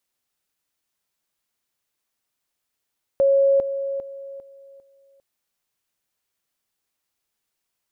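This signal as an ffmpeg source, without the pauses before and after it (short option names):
-f lavfi -i "aevalsrc='pow(10,(-13.5-10*floor(t/0.4))/20)*sin(2*PI*550*t)':d=2:s=44100"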